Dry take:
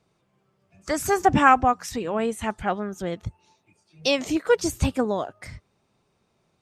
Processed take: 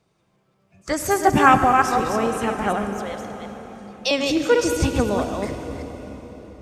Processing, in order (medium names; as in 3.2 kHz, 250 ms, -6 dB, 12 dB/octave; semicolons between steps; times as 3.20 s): chunks repeated in reverse 182 ms, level -4 dB; 2.98–4.11 s: high-pass 550 Hz 24 dB/octave; reverberation RT60 4.8 s, pre-delay 60 ms, DRR 7.5 dB; trim +1.5 dB